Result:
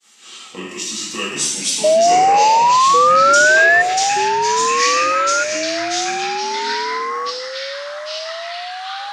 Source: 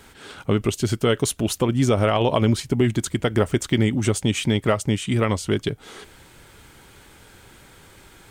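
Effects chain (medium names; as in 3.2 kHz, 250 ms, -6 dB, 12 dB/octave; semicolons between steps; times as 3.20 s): pitch bend over the whole clip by -5 st starting unshifted; frequency weighting ITU-R 468; expander -39 dBFS; tone controls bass +2 dB, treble +5 dB; band-stop 1.6 kHz, Q 6.1; gated-style reverb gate 280 ms falling, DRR -7 dB; high-pass sweep 230 Hz -> 1.7 kHz, 1.60–3.05 s; painted sound rise, 1.67–3.48 s, 670–2000 Hz -1 dBFS; tape speed -9%; ever faster or slower copies 622 ms, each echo -4 st, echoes 3, each echo -6 dB; trim -11 dB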